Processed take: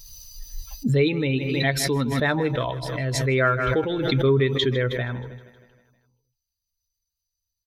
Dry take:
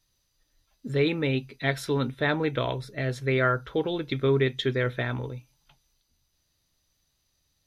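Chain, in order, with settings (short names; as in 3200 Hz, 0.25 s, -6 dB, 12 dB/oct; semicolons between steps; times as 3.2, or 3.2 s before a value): per-bin expansion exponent 1.5; feedback echo 0.158 s, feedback 59%, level -17 dB; backwards sustainer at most 28 dB/s; gain +4.5 dB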